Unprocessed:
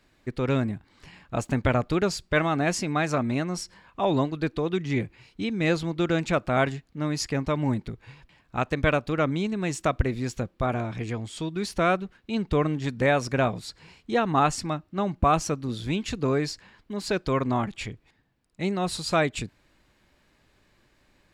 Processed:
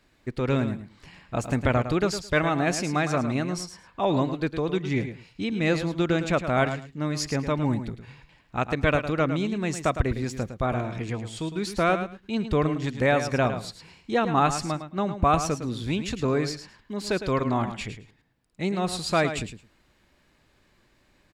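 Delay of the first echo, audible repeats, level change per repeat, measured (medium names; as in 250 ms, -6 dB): 108 ms, 2, -16.0 dB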